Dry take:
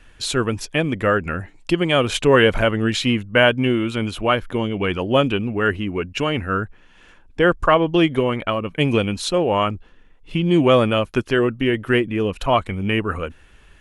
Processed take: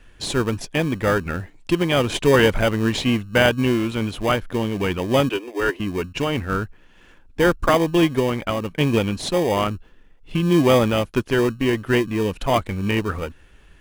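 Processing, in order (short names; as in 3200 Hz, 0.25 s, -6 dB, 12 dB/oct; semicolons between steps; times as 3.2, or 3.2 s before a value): 5.29–5.8 steep high-pass 290 Hz 72 dB/oct; in parallel at -7.5 dB: sample-and-hold 32×; on the sum: gain -3 dB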